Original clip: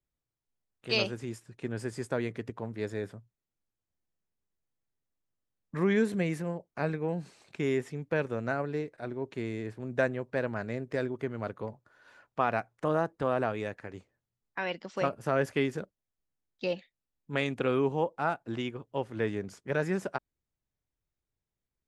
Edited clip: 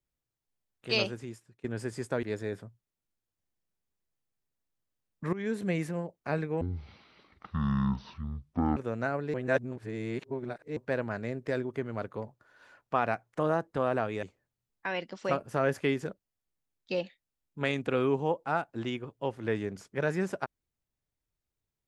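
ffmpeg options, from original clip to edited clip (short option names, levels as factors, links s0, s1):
-filter_complex "[0:a]asplit=9[s0][s1][s2][s3][s4][s5][s6][s7][s8];[s0]atrim=end=1.64,asetpts=PTS-STARTPTS,afade=t=out:st=1.04:d=0.6:silence=0.133352[s9];[s1]atrim=start=1.64:end=2.232,asetpts=PTS-STARTPTS,afade=t=in:d=0.004:c=hsin:silence=0.133352[s10];[s2]atrim=start=2.738:end=5.84,asetpts=PTS-STARTPTS,afade=t=out:st=3.098:d=0.004:c=hsin:silence=0.141254[s11];[s3]atrim=start=5.84:end=7.124,asetpts=PTS-STARTPTS,afade=t=in:d=0.4:silence=0.141254[s12];[s4]atrim=start=7.12:end=8.22,asetpts=PTS-STARTPTS,asetrate=22491,aresample=44100[s13];[s5]atrim=start=8.216:end=8.792[s14];[s6]atrim=start=8.788:end=10.222,asetpts=PTS-STARTPTS,areverse[s15];[s7]atrim=start=10.218:end=13.682[s16];[s8]atrim=start=13.948[s17];[s9][s10]concat=n=2:v=0:a=1[s18];[s11][s12]concat=n=2:v=0:a=1[s19];[s18][s19]acrossfade=d=0.004:c1=hsin:c2=hsin[s20];[s20][s13]acrossfade=d=0.004:c1=hsin:c2=hsin[s21];[s21][s14]acrossfade=d=0.004:c1=hsin:c2=hsin[s22];[s22][s15]acrossfade=d=0.004:c1=hsin:c2=hsin[s23];[s23][s16]acrossfade=d=0.004:c1=hsin:c2=hsin[s24];[s24][s17]acrossfade=d=0.004:c1=hsin:c2=hsin"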